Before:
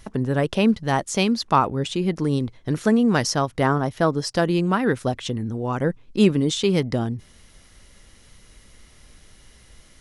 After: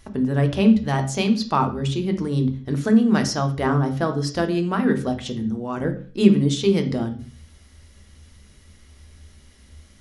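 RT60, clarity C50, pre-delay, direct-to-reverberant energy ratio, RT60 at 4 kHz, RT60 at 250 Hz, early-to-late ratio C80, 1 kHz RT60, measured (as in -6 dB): 0.45 s, 11.5 dB, 3 ms, 5.5 dB, 0.40 s, 0.50 s, 17.0 dB, 0.45 s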